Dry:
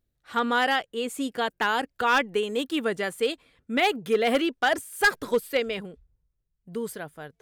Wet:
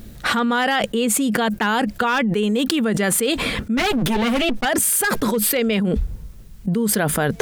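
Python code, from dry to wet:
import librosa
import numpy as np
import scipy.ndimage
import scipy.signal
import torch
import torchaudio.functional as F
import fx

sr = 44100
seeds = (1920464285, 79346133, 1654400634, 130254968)

y = fx.lower_of_two(x, sr, delay_ms=7.8, at=(3.76, 4.64), fade=0.02)
y = fx.peak_eq(y, sr, hz=210.0, db=12.5, octaves=0.34)
y = fx.env_flatten(y, sr, amount_pct=100)
y = F.gain(torch.from_numpy(y), -2.5).numpy()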